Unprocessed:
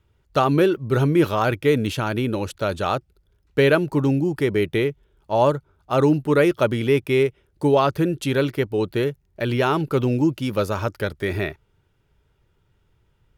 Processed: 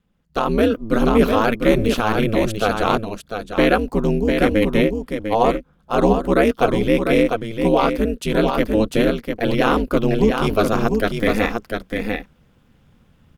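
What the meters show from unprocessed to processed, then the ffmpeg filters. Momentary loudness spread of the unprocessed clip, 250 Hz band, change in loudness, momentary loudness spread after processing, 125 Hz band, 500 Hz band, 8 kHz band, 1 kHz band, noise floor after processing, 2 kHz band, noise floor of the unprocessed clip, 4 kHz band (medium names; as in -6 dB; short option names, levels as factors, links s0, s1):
8 LU, +4.0 dB, +2.5 dB, 8 LU, -1.5 dB, +2.5 dB, +3.5 dB, +4.0 dB, -58 dBFS, +3.5 dB, -65 dBFS, +3.5 dB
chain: -af "aeval=exprs='val(0)*sin(2*PI*110*n/s)':c=same,aecho=1:1:699:0.501,dynaudnorm=f=350:g=3:m=3.98,volume=0.891"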